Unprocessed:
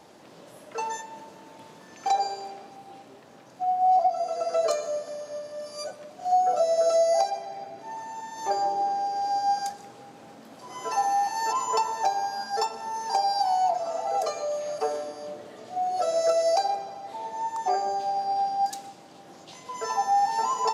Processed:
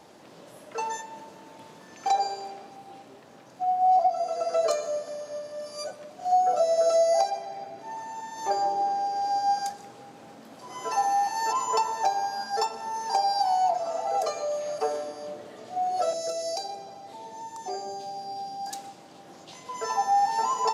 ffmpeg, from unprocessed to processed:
-filter_complex "[0:a]asettb=1/sr,asplit=3[a][b][c];[a]atrim=end=16.134[d];[b]atrim=start=16.13:end=18.67,asetpts=PTS-STARTPTS,afade=t=in:d=0.004:c=qsin,afade=t=out:st=2.536:d=0.004:c=qsin,acrossover=split=450|3000[e][f][g];[f]acompressor=threshold=-48dB:ratio=2:attack=3.2:release=140:knee=2.83:detection=peak[h];[e][h][g]amix=inputs=3:normalize=0[i];[c]atrim=start=18.666[j];[d][i]acrossfade=d=0.004:c1=hsin:c2=qsin[k];[k][j]acrossfade=d=0.004:c1=qsin:c2=hsin"

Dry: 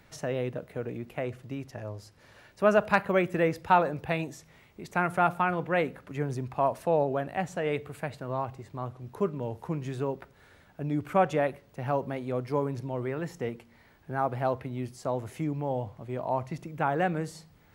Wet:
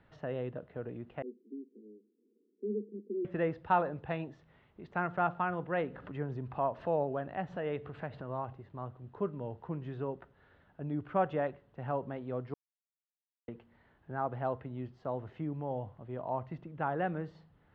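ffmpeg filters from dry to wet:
-filter_complex "[0:a]asettb=1/sr,asplit=3[a][b][c];[a]atrim=end=1.224[d];[b]atrim=start=1.22:end=3.25,asetpts=PTS-STARTPTS,afade=t=in:d=0.004:c=qsin,afade=t=out:st=2.026:d=0.004:c=qsin,asuperpass=centerf=310:order=20:qfactor=1.2[e];[c]atrim=start=3.246[f];[d][e]acrossfade=d=0.004:c1=hsin:c2=qsin[g];[g][f]acrossfade=d=0.004:c1=qsin:c2=hsin,asettb=1/sr,asplit=3[h][i][j];[h]atrim=end=5.844[k];[i]atrim=start=5.84:end=8.53,asetpts=PTS-STARTPTS,afade=t=in:d=0.004:c=qsin,afade=t=out:st=2.686:d=0.004:c=qsin,acompressor=mode=upward:threshold=-30dB:ratio=2.5:attack=3.2:release=140:knee=2.83:detection=peak[l];[j]atrim=start=8.526[m];[k][l]acrossfade=d=0.004:c1=hsin:c2=qsin[n];[n][m]acrossfade=d=0.004:c1=qsin:c2=hsin,asplit=3[o][p][q];[o]atrim=end=12.54,asetpts=PTS-STARTPTS,afade=t=out:st=12.536:d=0.004:c=hsin[r];[p]atrim=start=12.54:end=13.48,asetpts=PTS-STARTPTS,volume=0[s];[q]atrim=start=13.48,asetpts=PTS-STARTPTS,afade=t=in:d=0.004:c=hsin[t];[r][s][t]concat=n=3:v=0:a=1,lowpass=f=3.1k:w=0.5412,lowpass=f=3.1k:w=1.3066,equalizer=f=2.3k:t=o:w=0.28:g=-10,volume=-6dB"

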